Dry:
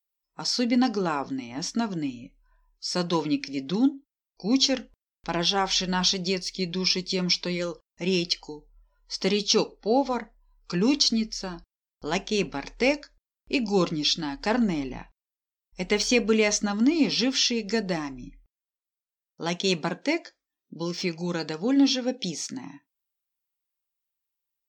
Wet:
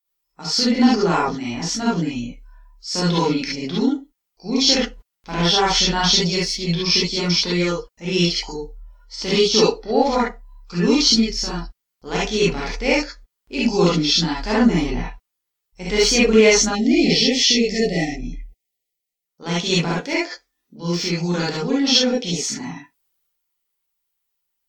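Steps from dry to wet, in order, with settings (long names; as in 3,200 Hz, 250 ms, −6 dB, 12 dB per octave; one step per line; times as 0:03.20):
transient designer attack −7 dB, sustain +4 dB
reverb whose tail is shaped and stops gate 90 ms rising, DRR −6.5 dB
time-frequency box erased 0:16.75–0:19.26, 810–1,800 Hz
level +1.5 dB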